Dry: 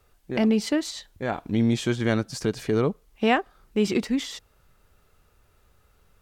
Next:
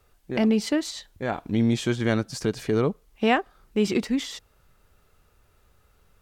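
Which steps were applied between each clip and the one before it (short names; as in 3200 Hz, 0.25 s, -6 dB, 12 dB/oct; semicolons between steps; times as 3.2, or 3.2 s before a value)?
nothing audible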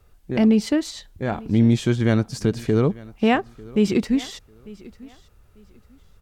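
low shelf 260 Hz +9 dB; feedback echo 0.896 s, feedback 24%, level -21.5 dB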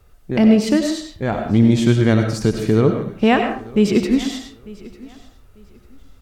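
reverb RT60 0.50 s, pre-delay 55 ms, DRR 4.5 dB; gain +3.5 dB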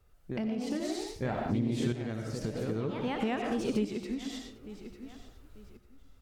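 echoes that change speed 0.159 s, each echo +2 st, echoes 3, each echo -6 dB; compressor 6:1, threshold -20 dBFS, peak gain reduction 12.5 dB; tremolo saw up 0.52 Hz, depth 55%; gain -6.5 dB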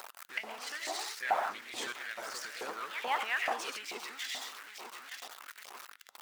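zero-crossing step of -40.5 dBFS; harmonic-percussive split percussive +9 dB; LFO high-pass saw up 2.3 Hz 770–2100 Hz; gain -4.5 dB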